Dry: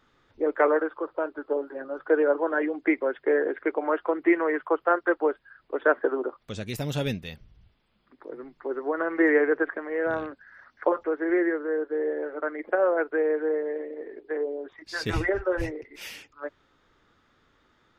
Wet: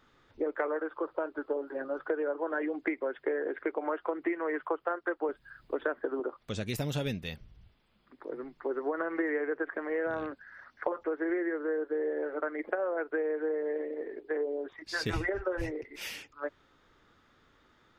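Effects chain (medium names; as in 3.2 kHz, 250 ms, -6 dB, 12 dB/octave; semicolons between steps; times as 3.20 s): 5.29–6.20 s: tone controls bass +11 dB, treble +9 dB; compression 10:1, threshold -28 dBFS, peak gain reduction 14 dB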